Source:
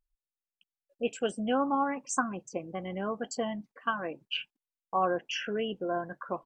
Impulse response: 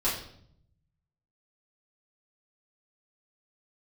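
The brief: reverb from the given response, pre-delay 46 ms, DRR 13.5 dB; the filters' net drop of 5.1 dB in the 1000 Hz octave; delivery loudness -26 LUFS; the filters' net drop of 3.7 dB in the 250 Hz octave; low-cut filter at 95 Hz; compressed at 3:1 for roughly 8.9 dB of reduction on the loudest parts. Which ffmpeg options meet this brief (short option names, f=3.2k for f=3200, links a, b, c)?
-filter_complex "[0:a]highpass=95,equalizer=f=250:t=o:g=-4,equalizer=f=1k:t=o:g=-6.5,acompressor=threshold=-39dB:ratio=3,asplit=2[a][b];[1:a]atrim=start_sample=2205,adelay=46[c];[b][c]afir=irnorm=-1:irlink=0,volume=-23dB[d];[a][d]amix=inputs=2:normalize=0,volume=16dB"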